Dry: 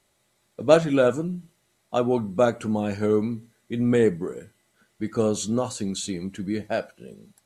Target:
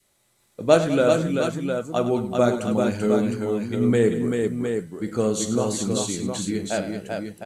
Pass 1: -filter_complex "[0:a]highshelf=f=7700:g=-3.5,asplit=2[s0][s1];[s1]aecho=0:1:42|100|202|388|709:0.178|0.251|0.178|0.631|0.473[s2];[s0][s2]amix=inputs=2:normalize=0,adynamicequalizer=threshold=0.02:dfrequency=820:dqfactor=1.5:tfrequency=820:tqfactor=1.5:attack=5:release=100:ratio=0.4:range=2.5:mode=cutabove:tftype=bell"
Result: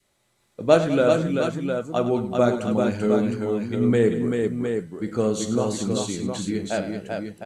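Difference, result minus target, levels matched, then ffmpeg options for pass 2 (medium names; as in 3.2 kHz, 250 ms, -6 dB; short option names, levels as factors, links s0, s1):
8 kHz band -4.5 dB
-filter_complex "[0:a]highshelf=f=7700:g=6.5,asplit=2[s0][s1];[s1]aecho=0:1:42|100|202|388|709:0.178|0.251|0.178|0.631|0.473[s2];[s0][s2]amix=inputs=2:normalize=0,adynamicequalizer=threshold=0.02:dfrequency=820:dqfactor=1.5:tfrequency=820:tqfactor=1.5:attack=5:release=100:ratio=0.4:range=2.5:mode=cutabove:tftype=bell"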